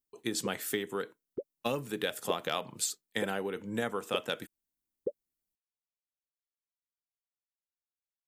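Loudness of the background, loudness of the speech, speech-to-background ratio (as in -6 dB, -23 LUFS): -42.5 LUFS, -35.0 LUFS, 7.5 dB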